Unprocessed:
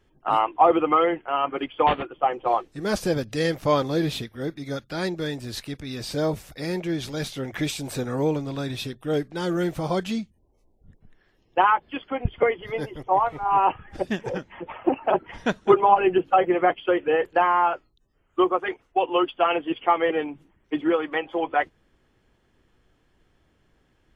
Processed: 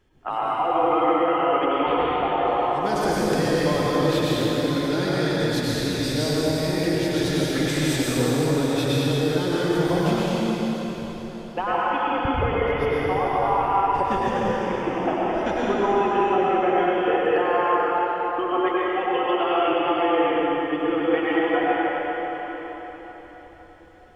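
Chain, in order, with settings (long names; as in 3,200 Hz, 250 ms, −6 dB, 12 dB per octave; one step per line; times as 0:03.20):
downward compressor 3 to 1, threshold −27 dBFS, peak gain reduction 12 dB
dense smooth reverb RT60 4.6 s, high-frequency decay 0.9×, pre-delay 85 ms, DRR −8 dB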